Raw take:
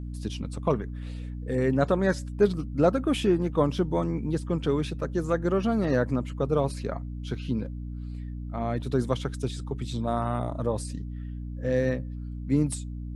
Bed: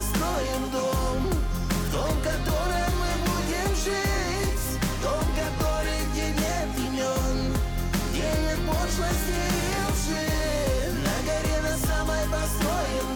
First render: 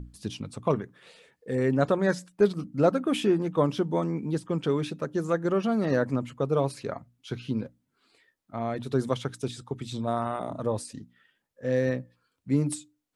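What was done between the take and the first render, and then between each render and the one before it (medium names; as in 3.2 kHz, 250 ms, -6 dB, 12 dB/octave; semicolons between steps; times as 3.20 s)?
hum notches 60/120/180/240/300 Hz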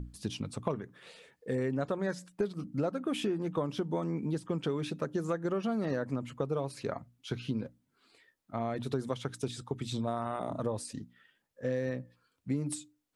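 compression, threshold -29 dBFS, peak gain reduction 13 dB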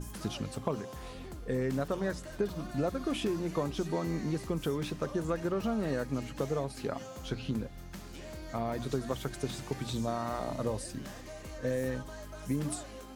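add bed -19 dB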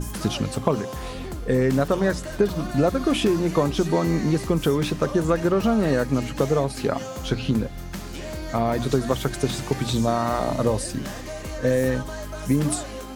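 trim +11.5 dB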